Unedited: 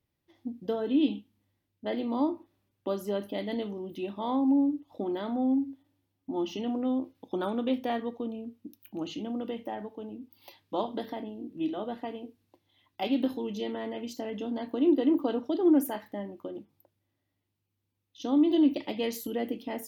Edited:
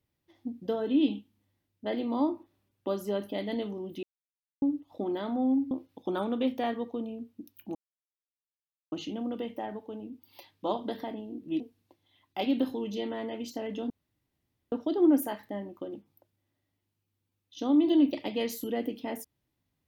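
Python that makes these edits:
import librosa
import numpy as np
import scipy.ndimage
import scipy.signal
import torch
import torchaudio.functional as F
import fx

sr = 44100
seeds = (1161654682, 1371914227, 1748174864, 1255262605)

y = fx.edit(x, sr, fx.silence(start_s=4.03, length_s=0.59),
    fx.cut(start_s=5.71, length_s=1.26),
    fx.insert_silence(at_s=9.01, length_s=1.17),
    fx.cut(start_s=11.69, length_s=0.54),
    fx.room_tone_fill(start_s=14.53, length_s=0.82), tone=tone)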